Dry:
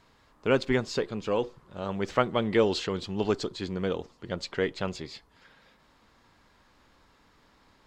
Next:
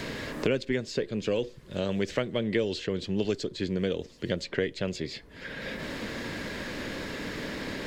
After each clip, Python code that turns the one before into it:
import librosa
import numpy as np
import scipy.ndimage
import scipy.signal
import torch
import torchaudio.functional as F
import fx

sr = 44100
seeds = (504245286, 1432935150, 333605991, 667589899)

y = fx.band_shelf(x, sr, hz=1000.0, db=-11.5, octaves=1.1)
y = fx.band_squash(y, sr, depth_pct=100)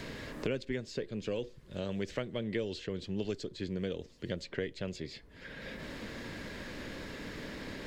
y = fx.low_shelf(x, sr, hz=99.0, db=6.0)
y = y * librosa.db_to_amplitude(-8.0)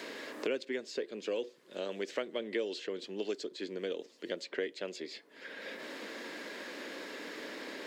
y = scipy.signal.sosfilt(scipy.signal.butter(4, 290.0, 'highpass', fs=sr, output='sos'), x)
y = y * librosa.db_to_amplitude(1.5)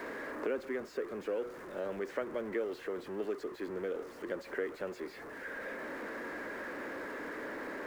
y = x + 0.5 * 10.0 ** (-38.5 / 20.0) * np.sign(x)
y = fx.high_shelf_res(y, sr, hz=2300.0, db=-13.0, q=1.5)
y = y * librosa.db_to_amplitude(-2.5)